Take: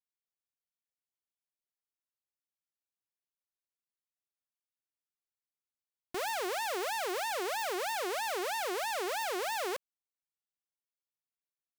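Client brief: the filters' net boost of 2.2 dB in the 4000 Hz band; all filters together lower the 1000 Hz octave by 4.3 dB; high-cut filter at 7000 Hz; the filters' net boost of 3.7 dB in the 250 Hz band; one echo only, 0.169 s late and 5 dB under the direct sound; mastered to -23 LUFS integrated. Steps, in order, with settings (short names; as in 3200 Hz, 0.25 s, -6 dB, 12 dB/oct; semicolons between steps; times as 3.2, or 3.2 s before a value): LPF 7000 Hz; bell 250 Hz +9 dB; bell 1000 Hz -6.5 dB; bell 4000 Hz +3.5 dB; echo 0.169 s -5 dB; gain +10.5 dB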